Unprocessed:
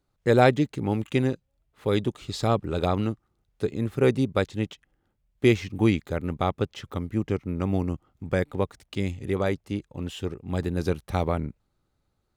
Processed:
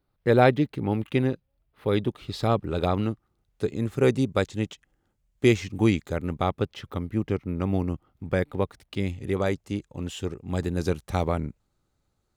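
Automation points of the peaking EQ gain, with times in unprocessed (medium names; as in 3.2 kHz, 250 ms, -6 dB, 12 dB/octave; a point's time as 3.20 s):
peaking EQ 7.1 kHz 0.66 oct
2.16 s -14 dB
2.57 s -5 dB
3.10 s -5 dB
3.93 s +5.5 dB
6.05 s +5.5 dB
6.78 s -5.5 dB
9.05 s -5.5 dB
9.51 s +5.5 dB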